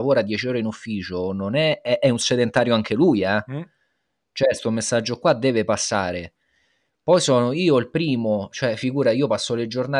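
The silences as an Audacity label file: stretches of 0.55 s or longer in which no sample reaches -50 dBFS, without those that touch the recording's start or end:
3.670000	4.360000	silence
6.290000	7.070000	silence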